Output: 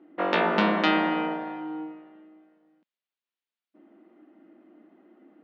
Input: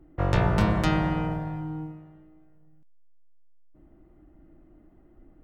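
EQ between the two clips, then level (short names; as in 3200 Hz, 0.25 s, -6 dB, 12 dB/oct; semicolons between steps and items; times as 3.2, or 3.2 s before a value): brick-wall FIR high-pass 190 Hz; LPF 3600 Hz 24 dB/oct; high shelf 2500 Hz +9.5 dB; +3.0 dB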